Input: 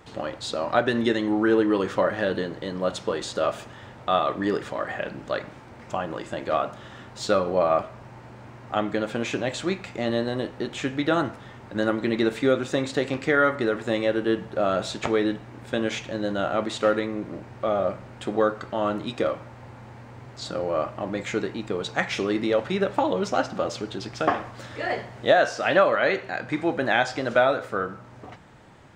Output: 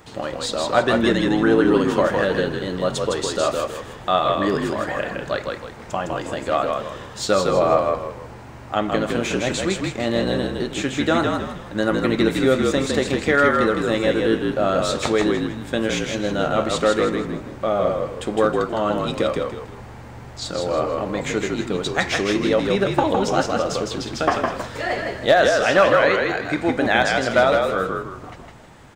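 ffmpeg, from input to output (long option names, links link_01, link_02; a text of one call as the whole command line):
ffmpeg -i in.wav -filter_complex "[0:a]highshelf=frequency=7000:gain=9,aeval=exprs='clip(val(0),-1,0.266)':channel_layout=same,asplit=2[link_01][link_02];[link_02]asplit=5[link_03][link_04][link_05][link_06][link_07];[link_03]adelay=159,afreqshift=-48,volume=-3.5dB[link_08];[link_04]adelay=318,afreqshift=-96,volume=-12.6dB[link_09];[link_05]adelay=477,afreqshift=-144,volume=-21.7dB[link_10];[link_06]adelay=636,afreqshift=-192,volume=-30.9dB[link_11];[link_07]adelay=795,afreqshift=-240,volume=-40dB[link_12];[link_08][link_09][link_10][link_11][link_12]amix=inputs=5:normalize=0[link_13];[link_01][link_13]amix=inputs=2:normalize=0,volume=3dB" out.wav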